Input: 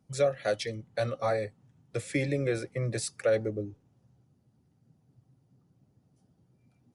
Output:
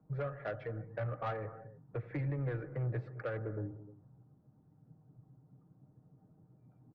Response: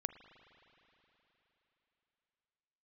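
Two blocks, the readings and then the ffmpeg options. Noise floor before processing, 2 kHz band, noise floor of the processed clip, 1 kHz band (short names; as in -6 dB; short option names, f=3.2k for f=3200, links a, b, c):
-70 dBFS, -9.5 dB, -67 dBFS, -6.5 dB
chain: -filter_complex "[0:a]lowpass=f=1.4k:w=0.5412,lowpass=f=1.4k:w=1.3066,aecho=1:1:6.5:0.45,acrossover=split=130|1100[a][b][c];[b]acompressor=threshold=-40dB:ratio=6[d];[a][d][c]amix=inputs=3:normalize=0,asoftclip=type=tanh:threshold=-32dB[e];[1:a]atrim=start_sample=2205,afade=t=out:st=0.21:d=0.01,atrim=end_sample=9702,asetrate=22491,aresample=44100[f];[e][f]afir=irnorm=-1:irlink=0"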